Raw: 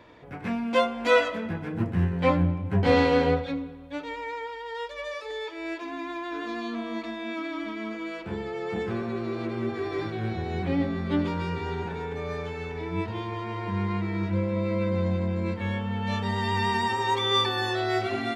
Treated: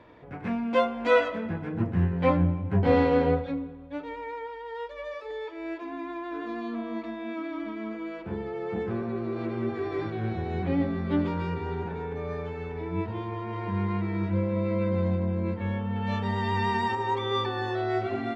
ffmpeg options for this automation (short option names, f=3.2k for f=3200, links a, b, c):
-af "asetnsamples=n=441:p=0,asendcmd='2.79 lowpass f 1200;9.36 lowpass f 2000;11.54 lowpass f 1300;13.53 lowpass f 2000;15.15 lowpass f 1200;15.96 lowpass f 2200;16.95 lowpass f 1100',lowpass=f=2k:p=1"